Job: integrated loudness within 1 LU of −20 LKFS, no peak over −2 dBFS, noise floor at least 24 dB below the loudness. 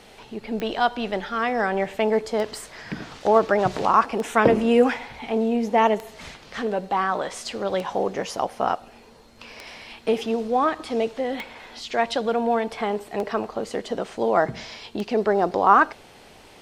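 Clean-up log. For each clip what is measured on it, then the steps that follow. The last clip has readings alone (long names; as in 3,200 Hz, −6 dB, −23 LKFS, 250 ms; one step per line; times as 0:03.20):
number of clicks 9; integrated loudness −23.5 LKFS; sample peak −3.5 dBFS; target loudness −20.0 LKFS
→ click removal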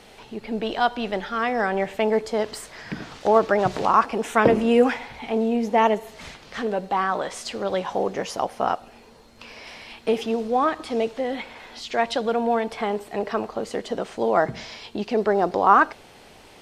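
number of clicks 0; integrated loudness −23.5 LKFS; sample peak −3.5 dBFS; target loudness −20.0 LKFS
→ level +3.5 dB
brickwall limiter −2 dBFS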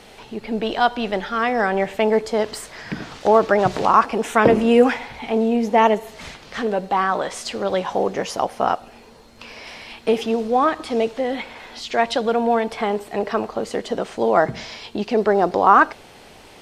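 integrated loudness −20.0 LKFS; sample peak −2.0 dBFS; background noise floor −45 dBFS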